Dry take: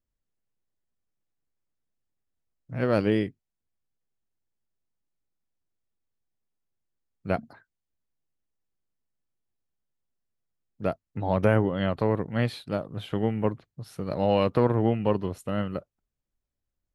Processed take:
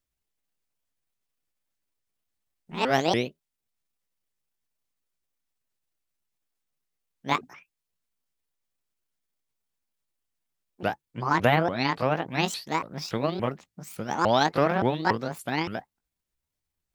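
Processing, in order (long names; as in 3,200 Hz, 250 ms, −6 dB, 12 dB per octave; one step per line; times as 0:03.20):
pitch shifter swept by a sawtooth +10.5 semitones, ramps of 285 ms
tilt shelving filter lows −5 dB
level +3 dB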